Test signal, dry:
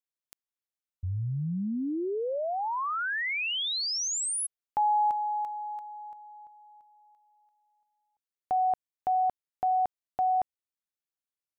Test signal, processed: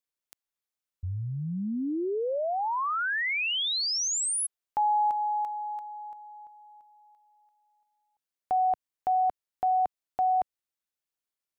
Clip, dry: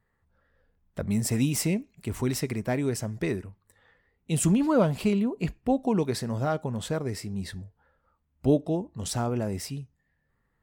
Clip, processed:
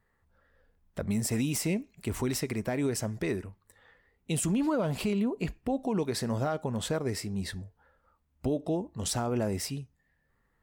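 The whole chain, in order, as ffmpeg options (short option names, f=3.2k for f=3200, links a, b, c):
-af "equalizer=f=130:w=0.91:g=-4,alimiter=limit=-23dB:level=0:latency=1:release=117,volume=2dB"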